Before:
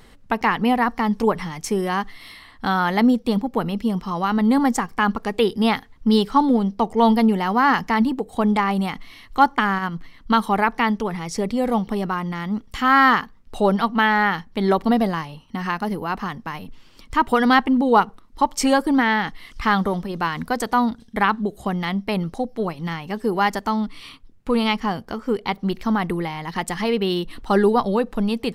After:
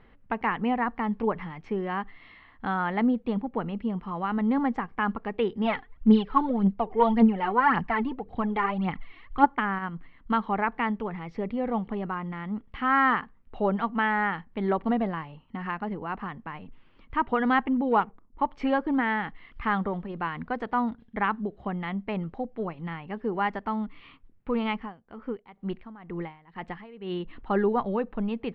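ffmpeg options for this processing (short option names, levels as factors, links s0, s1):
-filter_complex "[0:a]asplit=3[s0][s1][s2];[s0]afade=t=out:st=5.64:d=0.02[s3];[s1]aphaser=in_gain=1:out_gain=1:delay=2.9:decay=0.65:speed=1.8:type=triangular,afade=t=in:st=5.64:d=0.02,afade=t=out:st=9.44:d=0.02[s4];[s2]afade=t=in:st=9.44:d=0.02[s5];[s3][s4][s5]amix=inputs=3:normalize=0,asettb=1/sr,asplit=3[s6][s7][s8];[s6]atrim=end=17.914[s9];[s7]atrim=start=17.91:end=18.42,asetpts=PTS-STARTPTS,afade=t=in:d=0.004:c=qsin,afade=t=out:st=0.506:d=0.004:c=qsin,adynamicsmooth=sensitivity=7.5:basefreq=760[s10];[s8]atrim=start=18.416[s11];[s9][s10]acrossfade=d=0.004:c1=hsin:c2=qsin[s12];[s12][s11]acrossfade=d=0.004:c1=qsin:c2=hsin,asettb=1/sr,asplit=3[s13][s14][s15];[s13]atrim=end=24.774[s16];[s14]atrim=start=24.77:end=27.2,asetpts=PTS-STARTPTS,afade=t=in:d=0.004:c=qsin,afade=t=out:st=2.426:d=0.004:c=qsin,aeval=exprs='val(0)*pow(10,-19*(0.5-0.5*cos(2*PI*2.1*n/s))/20)':c=same[s17];[s15]atrim=start=27.196[s18];[s16][s17]acrossfade=d=0.004:c1=hsin:c2=qsin[s19];[s19][s18]acrossfade=d=0.004:c1=qsin:c2=hsin,lowpass=f=2700:w=0.5412,lowpass=f=2700:w=1.3066,volume=0.422"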